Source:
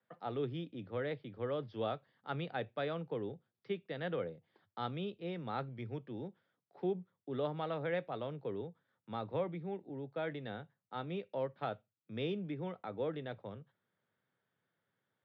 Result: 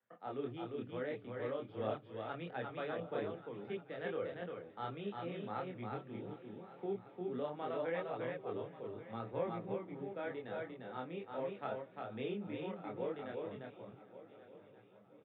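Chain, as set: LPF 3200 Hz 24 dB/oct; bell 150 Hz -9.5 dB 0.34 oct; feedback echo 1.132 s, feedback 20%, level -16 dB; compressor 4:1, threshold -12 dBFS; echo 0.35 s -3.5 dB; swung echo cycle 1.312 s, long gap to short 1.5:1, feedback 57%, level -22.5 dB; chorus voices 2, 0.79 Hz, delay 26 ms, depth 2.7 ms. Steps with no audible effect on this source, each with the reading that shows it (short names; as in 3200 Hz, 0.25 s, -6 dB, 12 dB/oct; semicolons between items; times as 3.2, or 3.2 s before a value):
compressor, threshold -12 dBFS: input peak -25.5 dBFS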